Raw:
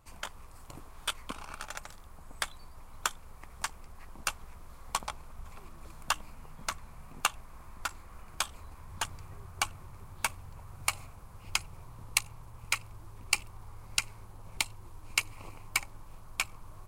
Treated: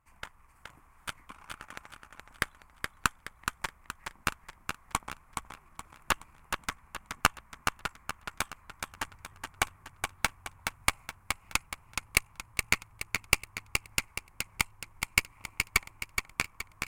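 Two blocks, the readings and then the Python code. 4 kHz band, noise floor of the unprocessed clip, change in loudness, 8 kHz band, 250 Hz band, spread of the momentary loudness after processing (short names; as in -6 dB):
+0.5 dB, -50 dBFS, +2.0 dB, 0.0 dB, +7.0 dB, 17 LU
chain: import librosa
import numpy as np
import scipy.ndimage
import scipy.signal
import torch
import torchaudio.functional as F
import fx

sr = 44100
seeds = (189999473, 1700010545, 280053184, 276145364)

y = fx.graphic_eq(x, sr, hz=(500, 1000, 2000, 4000), db=(-6, 4, 9, -10))
y = fx.cheby_harmonics(y, sr, harmonics=(3, 4, 5, 7), levels_db=(-24, -16, -25, -18), full_scale_db=-4.5)
y = fx.echo_feedback(y, sr, ms=422, feedback_pct=40, wet_db=-5.5)
y = F.gain(torch.from_numpy(y), 2.0).numpy()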